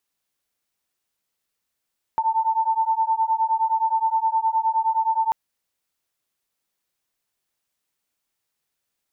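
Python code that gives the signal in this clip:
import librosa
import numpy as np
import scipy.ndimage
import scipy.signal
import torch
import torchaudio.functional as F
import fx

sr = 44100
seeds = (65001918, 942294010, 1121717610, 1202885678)

y = fx.two_tone_beats(sr, length_s=3.14, hz=888.0, beat_hz=9.6, level_db=-21.5)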